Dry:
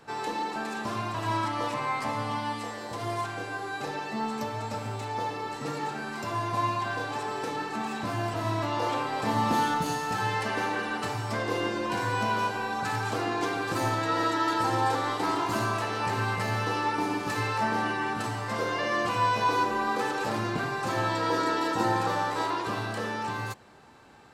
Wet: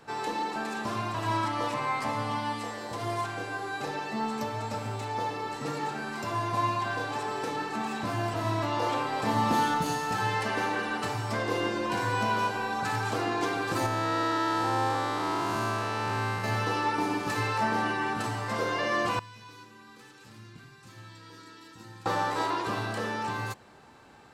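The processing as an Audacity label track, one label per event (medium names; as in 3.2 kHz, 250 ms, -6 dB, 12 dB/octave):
13.860000	16.440000	spectral blur width 226 ms
19.190000	22.060000	amplifier tone stack bass-middle-treble 6-0-2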